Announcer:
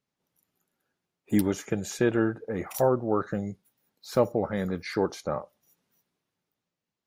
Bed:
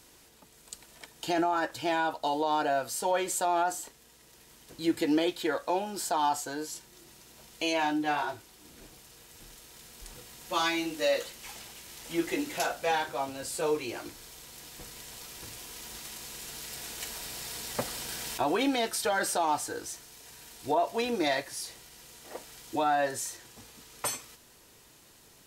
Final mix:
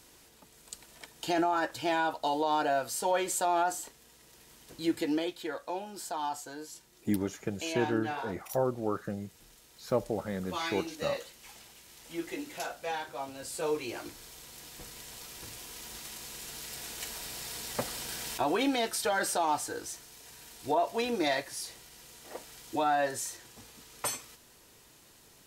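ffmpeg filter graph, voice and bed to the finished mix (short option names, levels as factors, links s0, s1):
-filter_complex "[0:a]adelay=5750,volume=0.501[s0];[1:a]volume=1.88,afade=t=out:st=4.72:d=0.64:silence=0.473151,afade=t=in:st=13.04:d=0.96:silence=0.501187[s1];[s0][s1]amix=inputs=2:normalize=0"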